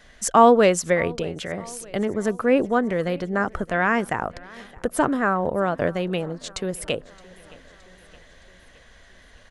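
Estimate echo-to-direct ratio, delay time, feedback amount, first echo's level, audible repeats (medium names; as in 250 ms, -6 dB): -21.5 dB, 618 ms, 58%, -23.0 dB, 3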